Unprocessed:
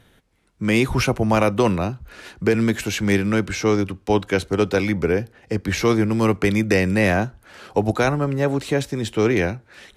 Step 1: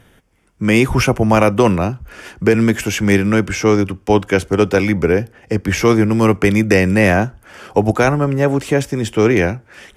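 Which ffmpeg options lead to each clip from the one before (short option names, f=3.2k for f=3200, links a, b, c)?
-af "equalizer=f=4k:t=o:w=0.2:g=-14,volume=5.5dB"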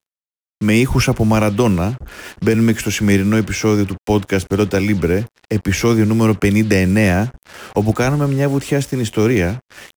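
-filter_complex "[0:a]acrossover=split=300|3000[a][b][c];[b]acompressor=threshold=-30dB:ratio=1.5[d];[a][d][c]amix=inputs=3:normalize=0,acrusher=bits=5:mix=0:aa=0.5,volume=1.5dB"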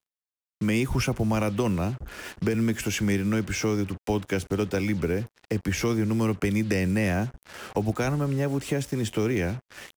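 -af "acompressor=threshold=-20dB:ratio=2,volume=-5.5dB"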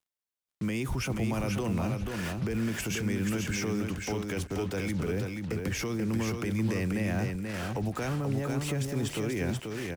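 -filter_complex "[0:a]alimiter=level_in=0.5dB:limit=-24dB:level=0:latency=1:release=31,volume=-0.5dB,asplit=2[a][b];[b]aecho=0:1:484|968|1452:0.596|0.101|0.0172[c];[a][c]amix=inputs=2:normalize=0"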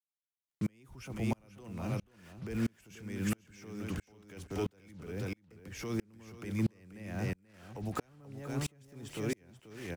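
-af "aeval=exprs='val(0)*pow(10,-37*if(lt(mod(-1.5*n/s,1),2*abs(-1.5)/1000),1-mod(-1.5*n/s,1)/(2*abs(-1.5)/1000),(mod(-1.5*n/s,1)-2*abs(-1.5)/1000)/(1-2*abs(-1.5)/1000))/20)':c=same,volume=1dB"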